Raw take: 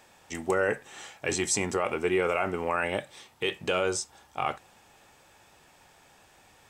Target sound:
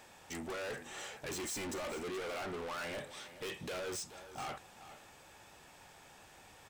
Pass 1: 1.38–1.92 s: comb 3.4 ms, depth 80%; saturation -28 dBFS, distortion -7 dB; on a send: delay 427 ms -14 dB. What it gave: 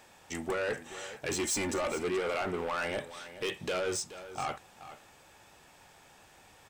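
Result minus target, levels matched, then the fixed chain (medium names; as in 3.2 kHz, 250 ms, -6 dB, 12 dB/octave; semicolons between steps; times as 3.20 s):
saturation: distortion -5 dB
1.38–1.92 s: comb 3.4 ms, depth 80%; saturation -39 dBFS, distortion -2 dB; on a send: delay 427 ms -14 dB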